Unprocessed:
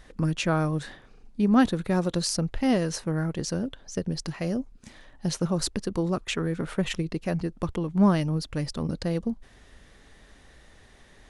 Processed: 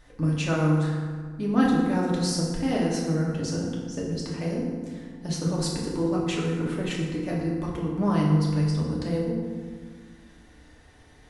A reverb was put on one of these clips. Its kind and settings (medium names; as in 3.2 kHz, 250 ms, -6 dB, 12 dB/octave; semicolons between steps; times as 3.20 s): FDN reverb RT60 1.7 s, low-frequency decay 1.35×, high-frequency decay 0.55×, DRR -4.5 dB; trim -6 dB